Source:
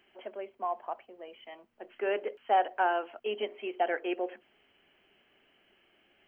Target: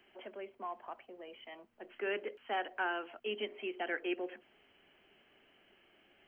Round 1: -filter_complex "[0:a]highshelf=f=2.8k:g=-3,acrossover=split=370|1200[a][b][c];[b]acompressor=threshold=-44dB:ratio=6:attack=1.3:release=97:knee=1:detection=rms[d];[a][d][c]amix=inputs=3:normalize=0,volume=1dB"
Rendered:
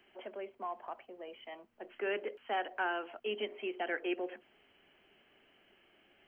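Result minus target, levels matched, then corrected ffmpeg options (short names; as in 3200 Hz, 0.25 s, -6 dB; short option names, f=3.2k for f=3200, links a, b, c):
compressor: peak gain reduction -6 dB
-filter_complex "[0:a]highshelf=f=2.8k:g=-3,acrossover=split=370|1200[a][b][c];[b]acompressor=threshold=-51.5dB:ratio=6:attack=1.3:release=97:knee=1:detection=rms[d];[a][d][c]amix=inputs=3:normalize=0,volume=1dB"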